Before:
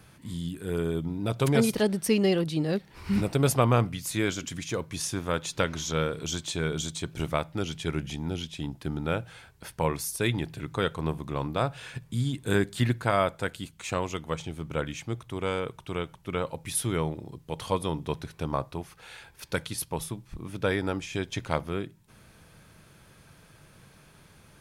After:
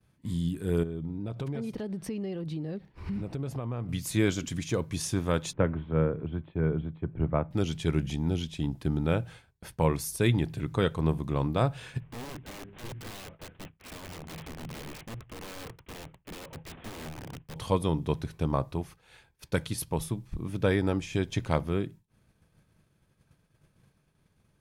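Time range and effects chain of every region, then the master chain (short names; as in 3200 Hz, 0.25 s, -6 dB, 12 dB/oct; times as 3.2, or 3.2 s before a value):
0.83–3.89 bell 12000 Hz -12.5 dB 2 oct + compressor 5:1, threshold -35 dBFS
5.53–7.51 Gaussian blur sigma 4.7 samples + three-band expander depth 40%
12–17.56 CVSD 16 kbps + compressor 16:1, threshold -32 dBFS + wrapped overs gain 36 dB
whole clip: low shelf 450 Hz +7.5 dB; notch 1400 Hz, Q 24; expander -38 dBFS; gain -2.5 dB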